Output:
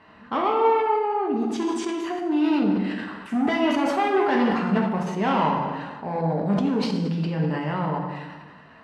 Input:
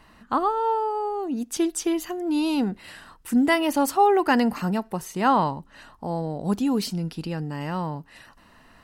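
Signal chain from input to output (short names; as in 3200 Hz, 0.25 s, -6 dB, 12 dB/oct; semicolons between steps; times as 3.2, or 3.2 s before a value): soft clip -22.5 dBFS, distortion -9 dB; BPF 120–2900 Hz; plate-style reverb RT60 1.3 s, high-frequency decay 0.75×, DRR -1.5 dB; sustainer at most 38 dB/s; gain +1.5 dB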